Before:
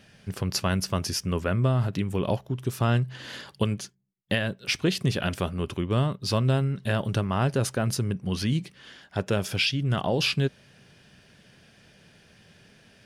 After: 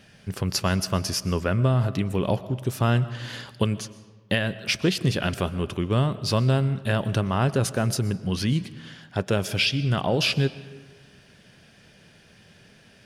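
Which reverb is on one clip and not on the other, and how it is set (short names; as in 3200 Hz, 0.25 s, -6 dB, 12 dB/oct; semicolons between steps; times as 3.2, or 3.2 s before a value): digital reverb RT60 1.4 s, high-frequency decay 0.65×, pre-delay 80 ms, DRR 16 dB; gain +2 dB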